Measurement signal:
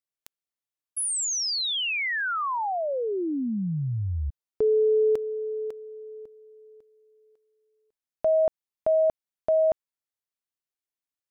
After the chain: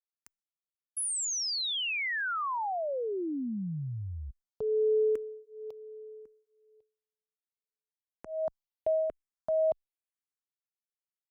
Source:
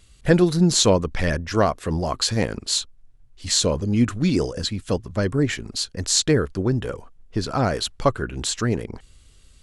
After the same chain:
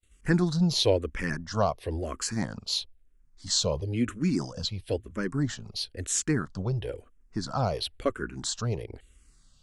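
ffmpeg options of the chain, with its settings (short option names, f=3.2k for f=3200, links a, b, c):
-filter_complex "[0:a]agate=range=-33dB:threshold=-47dB:ratio=3:release=428:detection=rms,asplit=2[a][b];[b]afreqshift=-1[c];[a][c]amix=inputs=2:normalize=1,volume=-4.5dB"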